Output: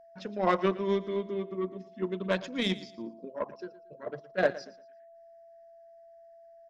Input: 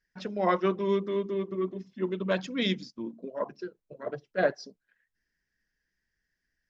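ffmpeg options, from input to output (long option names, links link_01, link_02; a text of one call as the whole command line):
ffmpeg -i in.wav -af "aeval=exprs='val(0)+0.00355*sin(2*PI*670*n/s)':channel_layout=same,aeval=exprs='0.282*(cos(1*acos(clip(val(0)/0.282,-1,1)))-cos(1*PI/2))+0.0141*(cos(7*acos(clip(val(0)/0.282,-1,1)))-cos(7*PI/2))':channel_layout=same,aecho=1:1:115|230|345:0.141|0.0396|0.0111" out.wav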